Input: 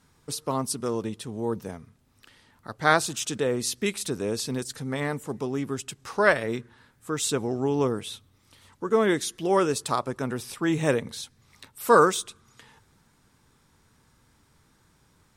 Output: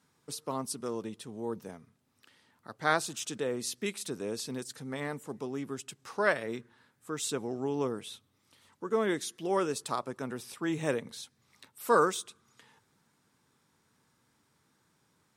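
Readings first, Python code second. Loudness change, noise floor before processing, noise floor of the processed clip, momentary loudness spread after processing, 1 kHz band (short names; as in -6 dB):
-7.0 dB, -64 dBFS, -73 dBFS, 14 LU, -7.0 dB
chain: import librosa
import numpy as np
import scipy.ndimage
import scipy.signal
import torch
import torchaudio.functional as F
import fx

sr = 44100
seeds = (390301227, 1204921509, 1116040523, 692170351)

y = scipy.signal.sosfilt(scipy.signal.butter(2, 140.0, 'highpass', fs=sr, output='sos'), x)
y = F.gain(torch.from_numpy(y), -7.0).numpy()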